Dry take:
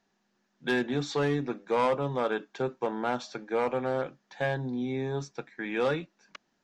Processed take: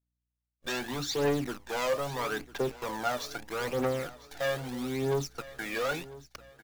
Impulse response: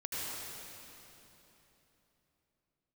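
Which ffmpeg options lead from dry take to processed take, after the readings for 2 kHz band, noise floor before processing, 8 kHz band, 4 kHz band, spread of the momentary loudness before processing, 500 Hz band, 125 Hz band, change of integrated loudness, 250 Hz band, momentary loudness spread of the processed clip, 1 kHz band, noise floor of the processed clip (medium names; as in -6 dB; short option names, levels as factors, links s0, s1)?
-1.0 dB, -75 dBFS, no reading, +3.5 dB, 8 LU, -2.0 dB, -2.5 dB, -2.0 dB, -3.5 dB, 10 LU, -3.0 dB, under -85 dBFS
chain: -af "aresample=16000,volume=26.6,asoftclip=hard,volume=0.0376,aresample=44100,bass=f=250:g=-6,treble=f=4000:g=4,acrusher=bits=8:dc=4:mix=0:aa=0.000001,aeval=exprs='val(0)+0.000501*(sin(2*PI*60*n/s)+sin(2*PI*2*60*n/s)/2+sin(2*PI*3*60*n/s)/3+sin(2*PI*4*60*n/s)/4+sin(2*PI*5*60*n/s)/5)':c=same,agate=range=0.0562:threshold=0.00112:ratio=16:detection=peak,aphaser=in_gain=1:out_gain=1:delay=1.8:decay=0.6:speed=0.78:type=triangular,aecho=1:1:999|1998|2997:0.126|0.0529|0.0222"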